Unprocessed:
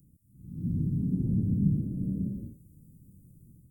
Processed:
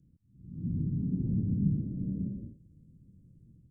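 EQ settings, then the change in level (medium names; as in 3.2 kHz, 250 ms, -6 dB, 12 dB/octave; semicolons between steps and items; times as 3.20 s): distance through air 140 m; -2.5 dB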